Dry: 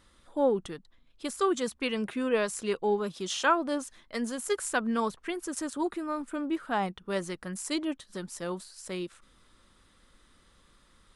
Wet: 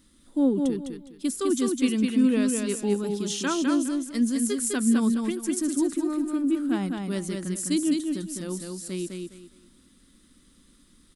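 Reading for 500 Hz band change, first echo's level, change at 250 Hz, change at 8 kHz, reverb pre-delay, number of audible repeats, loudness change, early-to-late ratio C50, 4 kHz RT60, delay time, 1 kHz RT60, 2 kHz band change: 0.0 dB, -4.0 dB, +10.0 dB, +7.5 dB, none, 3, +5.5 dB, none, none, 0.206 s, none, -3.0 dB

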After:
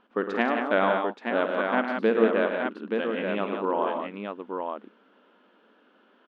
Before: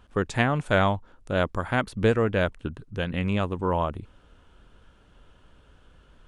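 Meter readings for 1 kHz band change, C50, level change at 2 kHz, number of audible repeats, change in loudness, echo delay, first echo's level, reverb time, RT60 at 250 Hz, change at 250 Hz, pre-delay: +1.5 dB, none, +0.5 dB, 4, -0.5 dB, 52 ms, -12.0 dB, none, none, 0.0 dB, none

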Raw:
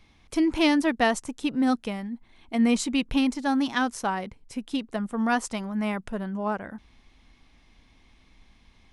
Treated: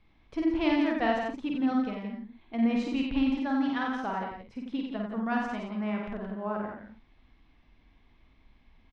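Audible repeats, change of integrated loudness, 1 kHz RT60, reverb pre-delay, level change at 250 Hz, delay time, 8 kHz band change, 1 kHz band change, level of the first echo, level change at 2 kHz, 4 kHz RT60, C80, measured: 4, -4.0 dB, none, none, -3.0 dB, 49 ms, under -20 dB, -4.0 dB, -3.0 dB, -5.5 dB, none, none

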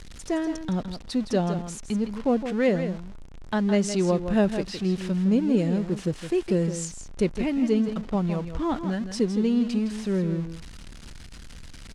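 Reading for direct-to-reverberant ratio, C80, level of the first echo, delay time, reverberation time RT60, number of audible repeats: none, none, -9.5 dB, 0.163 s, none, 1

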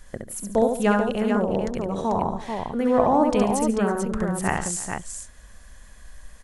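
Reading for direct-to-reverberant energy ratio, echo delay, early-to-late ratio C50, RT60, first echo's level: none, 67 ms, none, none, -4.0 dB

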